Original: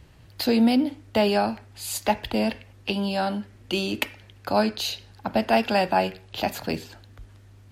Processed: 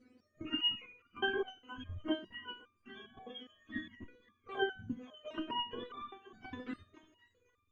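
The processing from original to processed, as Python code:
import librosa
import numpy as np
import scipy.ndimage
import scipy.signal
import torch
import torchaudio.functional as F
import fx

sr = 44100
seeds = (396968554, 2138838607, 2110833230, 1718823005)

p1 = fx.octave_mirror(x, sr, pivot_hz=810.0)
p2 = scipy.signal.sosfilt(scipy.signal.butter(2, 1700.0, 'lowpass', fs=sr, output='sos'), p1)
p3 = fx.level_steps(p2, sr, step_db=12)
p4 = fx.fixed_phaser(p3, sr, hz=360.0, stages=4)
p5 = p4 + fx.echo_thinned(p4, sr, ms=522, feedback_pct=27, hz=880.0, wet_db=-13.5, dry=0)
p6 = fx.resonator_held(p5, sr, hz=4.9, low_hz=250.0, high_hz=1200.0)
y = F.gain(torch.from_numpy(p6), 15.5).numpy()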